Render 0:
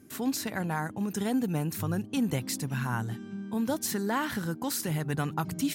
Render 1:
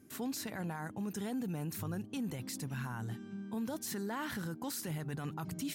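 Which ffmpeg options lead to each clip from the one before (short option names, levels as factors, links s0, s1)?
-af "alimiter=level_in=1.19:limit=0.0631:level=0:latency=1:release=14,volume=0.841,volume=0.531"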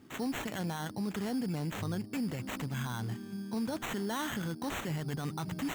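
-af "acrusher=samples=9:mix=1:aa=0.000001,volume=1.5"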